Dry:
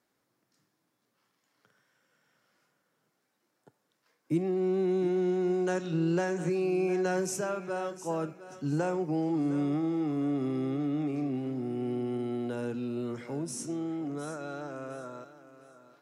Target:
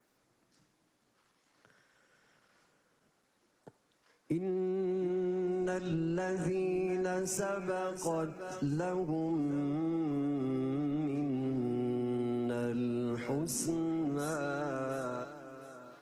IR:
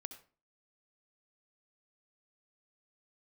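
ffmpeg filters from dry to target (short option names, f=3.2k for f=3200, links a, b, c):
-af "adynamicequalizer=threshold=0.00126:dfrequency=4600:dqfactor=1.8:tfrequency=4600:tqfactor=1.8:attack=5:release=100:ratio=0.375:range=2:mode=cutabove:tftype=bell,acompressor=threshold=-36dB:ratio=10,volume=5.5dB" -ar 48000 -c:a libopus -b:a 16k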